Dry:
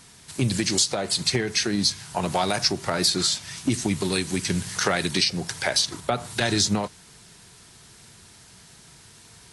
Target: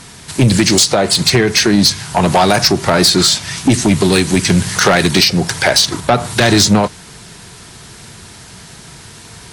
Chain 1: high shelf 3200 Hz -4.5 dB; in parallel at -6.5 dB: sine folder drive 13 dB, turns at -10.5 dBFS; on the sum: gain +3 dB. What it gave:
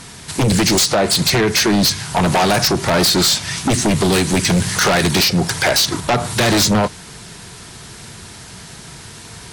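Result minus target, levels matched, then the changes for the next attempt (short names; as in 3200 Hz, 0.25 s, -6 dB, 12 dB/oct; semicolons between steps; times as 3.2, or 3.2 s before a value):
sine folder: distortion +12 dB
change: sine folder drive 13 dB, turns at -4.5 dBFS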